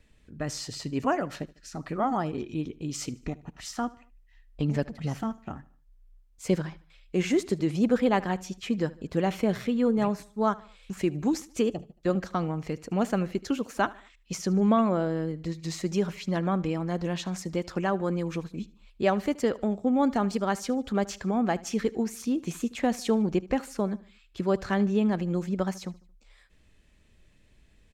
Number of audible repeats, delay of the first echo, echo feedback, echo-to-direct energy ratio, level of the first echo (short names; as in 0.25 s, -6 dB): 2, 75 ms, 43%, -20.0 dB, -21.0 dB